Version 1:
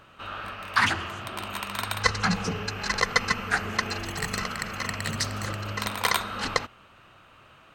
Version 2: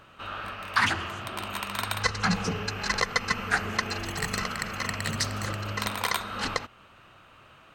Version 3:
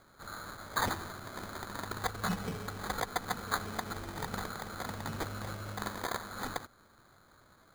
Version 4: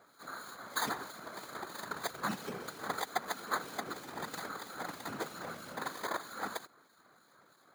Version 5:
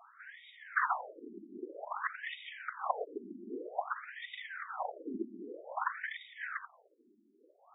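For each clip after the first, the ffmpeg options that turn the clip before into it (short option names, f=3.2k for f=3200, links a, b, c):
-af "alimiter=limit=-10dB:level=0:latency=1:release=255"
-af "acrusher=samples=16:mix=1:aa=0.000001,volume=-8dB"
-filter_complex "[0:a]afftfilt=real='hypot(re,im)*cos(2*PI*random(0))':imag='hypot(re,im)*sin(2*PI*random(1))':win_size=512:overlap=0.75,acrossover=split=2500[a][b];[a]aeval=exprs='val(0)*(1-0.5/2+0.5/2*cos(2*PI*3.1*n/s))':c=same[c];[b]aeval=exprs='val(0)*(1-0.5/2-0.5/2*cos(2*PI*3.1*n/s))':c=same[d];[c][d]amix=inputs=2:normalize=0,highpass=240,volume=7dB"
-af "afftfilt=real='re*between(b*sr/1024,270*pow(2700/270,0.5+0.5*sin(2*PI*0.52*pts/sr))/1.41,270*pow(2700/270,0.5+0.5*sin(2*PI*0.52*pts/sr))*1.41)':imag='im*between(b*sr/1024,270*pow(2700/270,0.5+0.5*sin(2*PI*0.52*pts/sr))/1.41,270*pow(2700/270,0.5+0.5*sin(2*PI*0.52*pts/sr))*1.41)':win_size=1024:overlap=0.75,volume=7.5dB"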